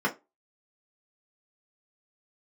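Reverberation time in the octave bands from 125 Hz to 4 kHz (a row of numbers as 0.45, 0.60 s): 0.20, 0.25, 0.25, 0.20, 0.20, 0.15 s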